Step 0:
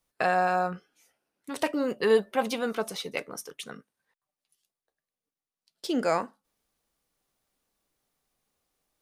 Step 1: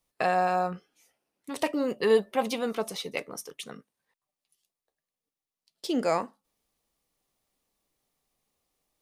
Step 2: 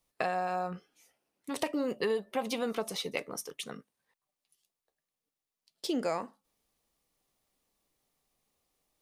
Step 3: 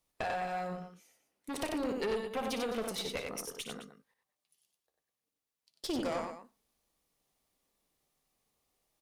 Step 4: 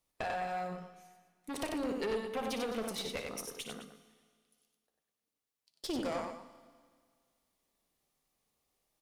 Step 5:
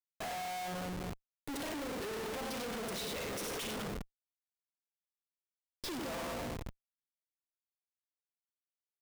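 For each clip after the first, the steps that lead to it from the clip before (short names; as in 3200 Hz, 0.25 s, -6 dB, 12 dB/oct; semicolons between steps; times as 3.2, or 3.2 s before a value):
bell 1500 Hz -7 dB 0.27 oct
compressor 6:1, threshold -28 dBFS, peak gain reduction 11 dB
on a send: tapped delay 59/94/210 ms -10/-5/-14 dB; on the sum: tube stage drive 28 dB, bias 0.5
Schroeder reverb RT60 1.9 s, combs from 28 ms, DRR 14 dB; gain -1.5 dB
frequency-shifting echo 0.118 s, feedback 58%, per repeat -75 Hz, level -17.5 dB; Schroeder reverb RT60 1 s, combs from 33 ms, DRR 6.5 dB; Schmitt trigger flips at -49 dBFS; gain +1 dB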